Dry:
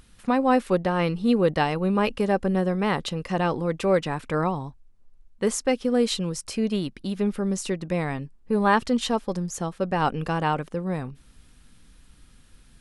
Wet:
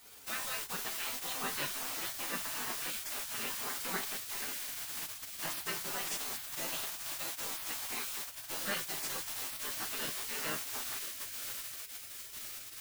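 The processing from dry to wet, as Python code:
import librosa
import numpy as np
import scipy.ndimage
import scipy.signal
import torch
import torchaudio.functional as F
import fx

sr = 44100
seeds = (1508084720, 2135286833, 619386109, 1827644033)

p1 = fx.quant_dither(x, sr, seeds[0], bits=6, dither='triangular')
p2 = fx.low_shelf(p1, sr, hz=430.0, db=-7.5)
p3 = p2 + fx.echo_diffused(p2, sr, ms=1067, feedback_pct=71, wet_db=-12, dry=0)
p4 = fx.dmg_noise_colour(p3, sr, seeds[1], colour='pink', level_db=-50.0)
p5 = fx.low_shelf(p4, sr, hz=74.0, db=-11.5)
p6 = fx.resonator_bank(p5, sr, root=45, chord='minor', decay_s=0.24)
p7 = fx.spec_gate(p6, sr, threshold_db=-15, keep='weak')
y = F.gain(torch.from_numpy(p7), 8.5).numpy()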